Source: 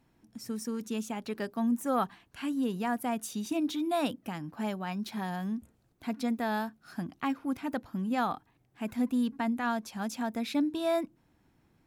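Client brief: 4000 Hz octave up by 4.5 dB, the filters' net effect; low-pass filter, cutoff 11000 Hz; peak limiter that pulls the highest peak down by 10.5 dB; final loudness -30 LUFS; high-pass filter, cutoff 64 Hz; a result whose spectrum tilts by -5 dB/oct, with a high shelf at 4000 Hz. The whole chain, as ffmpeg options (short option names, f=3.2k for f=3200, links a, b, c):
-af "highpass=64,lowpass=11k,highshelf=f=4k:g=-5.5,equalizer=f=4k:t=o:g=8.5,volume=7dB,alimiter=limit=-21dB:level=0:latency=1"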